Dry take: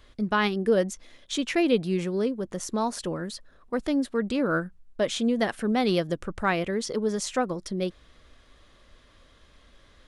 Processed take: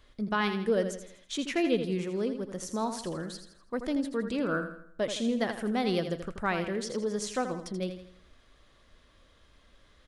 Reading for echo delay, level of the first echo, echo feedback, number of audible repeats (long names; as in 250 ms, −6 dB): 82 ms, −9.0 dB, 43%, 4